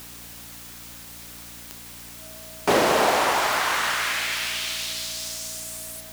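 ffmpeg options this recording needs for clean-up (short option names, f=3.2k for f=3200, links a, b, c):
-af "adeclick=t=4,bandreject=f=58.4:t=h:w=4,bandreject=f=116.8:t=h:w=4,bandreject=f=175.2:t=h:w=4,bandreject=f=233.6:t=h:w=4,bandreject=f=292:t=h:w=4,bandreject=f=640:w=30,afwtdn=0.0079"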